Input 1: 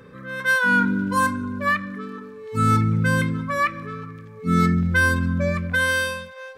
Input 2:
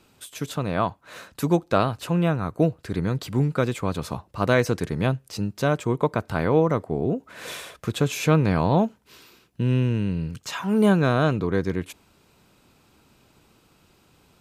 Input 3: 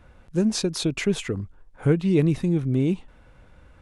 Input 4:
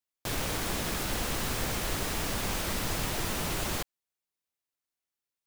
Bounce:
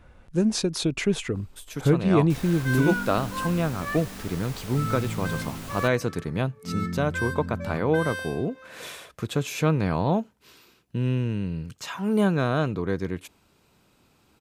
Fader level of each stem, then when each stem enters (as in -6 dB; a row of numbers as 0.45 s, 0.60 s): -12.0 dB, -3.5 dB, -0.5 dB, -8.5 dB; 2.20 s, 1.35 s, 0.00 s, 2.05 s